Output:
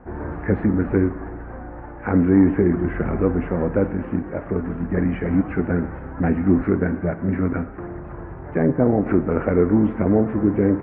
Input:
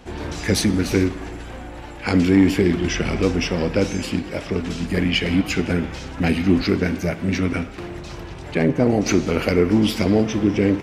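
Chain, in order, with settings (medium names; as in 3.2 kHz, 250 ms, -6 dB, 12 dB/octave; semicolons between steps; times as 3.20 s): steep low-pass 1.7 kHz 36 dB/octave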